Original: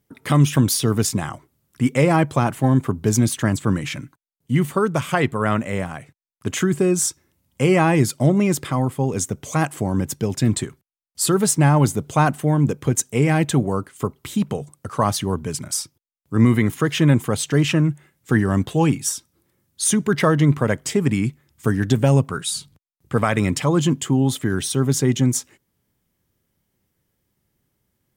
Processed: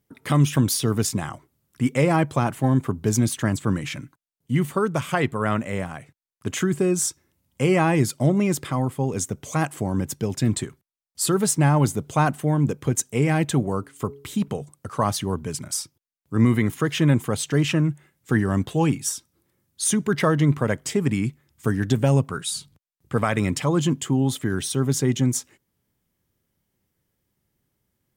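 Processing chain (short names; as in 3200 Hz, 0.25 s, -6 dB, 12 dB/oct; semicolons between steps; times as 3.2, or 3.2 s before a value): 13.61–14.48 de-hum 140.1 Hz, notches 3; gain -3 dB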